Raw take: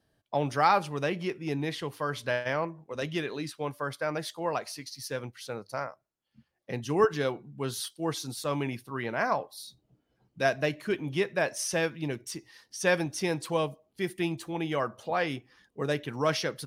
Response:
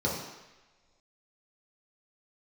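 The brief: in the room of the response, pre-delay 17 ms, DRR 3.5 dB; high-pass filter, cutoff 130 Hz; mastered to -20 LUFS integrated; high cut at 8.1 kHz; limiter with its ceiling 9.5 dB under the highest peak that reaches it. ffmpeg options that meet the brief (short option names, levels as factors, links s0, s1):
-filter_complex "[0:a]highpass=130,lowpass=8100,alimiter=limit=0.106:level=0:latency=1,asplit=2[s0][s1];[1:a]atrim=start_sample=2205,adelay=17[s2];[s1][s2]afir=irnorm=-1:irlink=0,volume=0.224[s3];[s0][s3]amix=inputs=2:normalize=0,volume=3.16"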